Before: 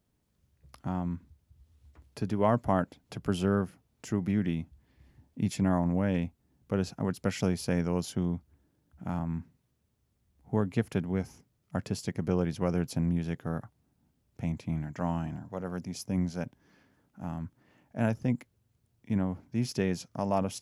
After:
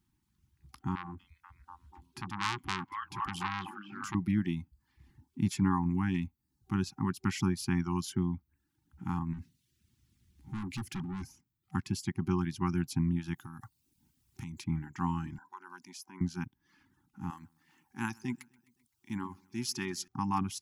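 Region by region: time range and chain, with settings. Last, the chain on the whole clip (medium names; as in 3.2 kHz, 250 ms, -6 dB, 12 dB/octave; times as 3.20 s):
0.95–4.15 s: repeats whose band climbs or falls 243 ms, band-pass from 2.9 kHz, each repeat -0.7 oct, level 0 dB + transformer saturation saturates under 3.1 kHz
9.33–11.24 s: amplifier tone stack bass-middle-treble 10-0-1 + overdrive pedal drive 40 dB, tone 4.8 kHz, clips at -28 dBFS
13.34–14.64 s: treble shelf 3.1 kHz +11 dB + compression 12:1, threshold -36 dBFS
15.38–16.21 s: Chebyshev high-pass 560 Hz + compression 3:1, threshold -44 dBFS + small resonant body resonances 1/1.5 kHz, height 10 dB, ringing for 30 ms
17.30–20.08 s: tone controls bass -12 dB, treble +6 dB + feedback delay 129 ms, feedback 49%, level -16 dB
whole clip: dynamic bell 1.1 kHz, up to +7 dB, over -55 dBFS, Q 5.3; FFT band-reject 380–770 Hz; reverb removal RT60 0.59 s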